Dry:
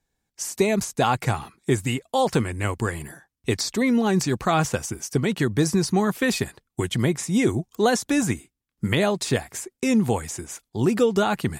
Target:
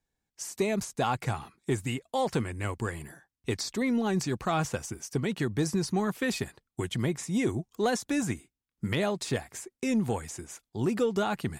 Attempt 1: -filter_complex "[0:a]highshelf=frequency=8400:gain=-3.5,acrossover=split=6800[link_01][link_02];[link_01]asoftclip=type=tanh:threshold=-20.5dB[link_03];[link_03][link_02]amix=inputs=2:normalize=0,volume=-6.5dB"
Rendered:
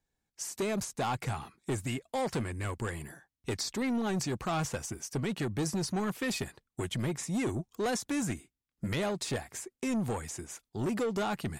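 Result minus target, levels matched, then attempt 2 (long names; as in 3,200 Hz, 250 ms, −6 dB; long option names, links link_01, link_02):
soft clipping: distortion +15 dB
-filter_complex "[0:a]highshelf=frequency=8400:gain=-3.5,acrossover=split=6800[link_01][link_02];[link_01]asoftclip=type=tanh:threshold=-9dB[link_03];[link_03][link_02]amix=inputs=2:normalize=0,volume=-6.5dB"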